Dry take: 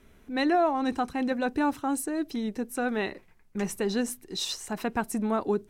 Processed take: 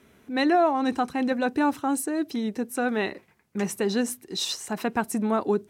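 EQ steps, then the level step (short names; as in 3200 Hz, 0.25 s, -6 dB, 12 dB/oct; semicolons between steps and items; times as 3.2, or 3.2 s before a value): HPF 110 Hz 12 dB/oct; +3.0 dB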